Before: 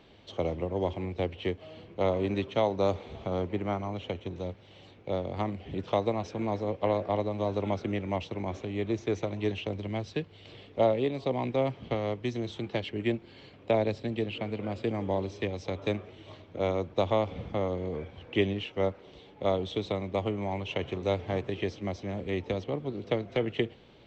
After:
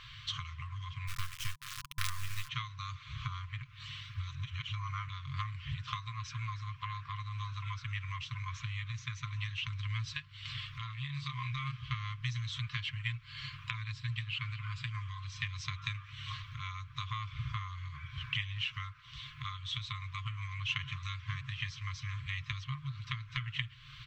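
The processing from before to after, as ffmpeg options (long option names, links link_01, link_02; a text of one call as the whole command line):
ffmpeg -i in.wav -filter_complex "[0:a]asplit=3[link_01][link_02][link_03];[link_01]afade=type=out:start_time=1.07:duration=0.02[link_04];[link_02]acrusher=bits=4:dc=4:mix=0:aa=0.000001,afade=type=in:start_time=1.07:duration=0.02,afade=type=out:start_time=2.47:duration=0.02[link_05];[link_03]afade=type=in:start_time=2.47:duration=0.02[link_06];[link_04][link_05][link_06]amix=inputs=3:normalize=0,asettb=1/sr,asplit=3[link_07][link_08][link_09];[link_07]atrim=end=11.064[link_10];[link_08]atrim=start=11.06:end=11.77,asetpts=PTS-STARTPTS,afade=type=in:duration=0.004:curve=qsin,afade=type=out:start_time=0.706:duration=0.004:curve=qsin,asplit=2[link_11][link_12];[link_12]adelay=27,volume=-3dB[link_13];[link_11][link_13]amix=inputs=2:normalize=0,atrim=end_sample=31311[link_14];[link_09]atrim=start=11.766[link_15];[link_10][link_14]acrossfade=duration=0.004:curve1=hsin:curve2=qsin[link_16];[link_16][link_15]acrossfade=duration=0.004:curve1=qsin:curve2=hsin,asplit=3[link_17][link_18][link_19];[link_17]atrim=end=3.622[link_20];[link_18]atrim=start=3.618:end=5.092,asetpts=PTS-STARTPTS,areverse[link_21];[link_19]atrim=start=5.088[link_22];[link_20][link_21]acrossfade=duration=0.004:curve1=hsin:curve2=hsin[link_23];[link_23][link_22]acrossfade=duration=0.004:curve1=hsin:curve2=hsin,aecho=1:1:6.6:0.45,acompressor=threshold=-42dB:ratio=3,afftfilt=real='re*(1-between(b*sr/4096,150,1000))':imag='im*(1-between(b*sr/4096,150,1000))':win_size=4096:overlap=0.75,volume=10.5dB" out.wav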